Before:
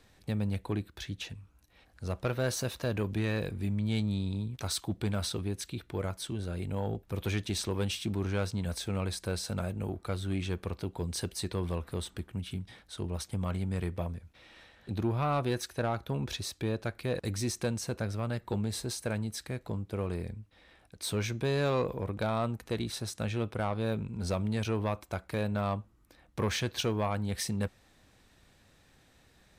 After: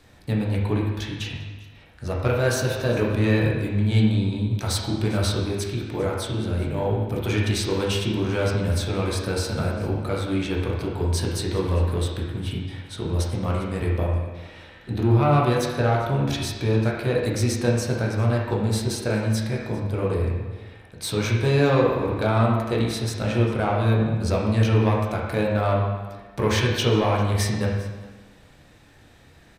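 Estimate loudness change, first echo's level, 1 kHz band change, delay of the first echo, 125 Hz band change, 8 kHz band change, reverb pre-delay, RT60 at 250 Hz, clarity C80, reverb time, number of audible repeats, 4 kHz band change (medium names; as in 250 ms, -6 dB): +10.5 dB, -21.0 dB, +10.5 dB, 399 ms, +11.5 dB, +6.0 dB, 12 ms, 1.3 s, 3.5 dB, 1.3 s, 1, +7.5 dB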